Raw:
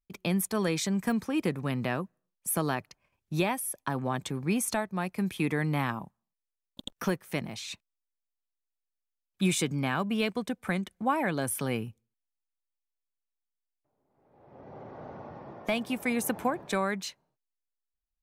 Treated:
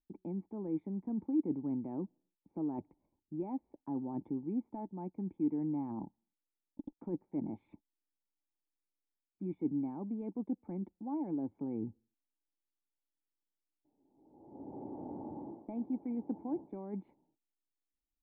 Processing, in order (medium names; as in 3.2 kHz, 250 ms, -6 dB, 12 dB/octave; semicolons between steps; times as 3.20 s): peaking EQ 130 Hz -4.5 dB 0.64 oct; reverse; compression 6:1, threshold -37 dBFS, peak gain reduction 14.5 dB; reverse; cascade formant filter u; trim +11 dB